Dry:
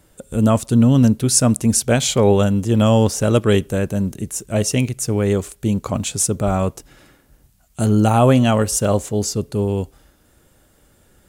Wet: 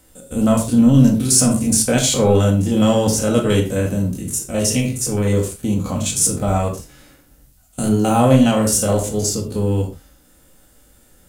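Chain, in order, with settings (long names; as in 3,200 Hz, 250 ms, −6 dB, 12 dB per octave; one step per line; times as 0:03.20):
spectrum averaged block by block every 50 ms
high-shelf EQ 4,300 Hz +8 dB
in parallel at −7 dB: soft clipping −15 dBFS, distortion −11 dB
on the sum: convolution reverb, pre-delay 4 ms, DRR 1 dB
level −4.5 dB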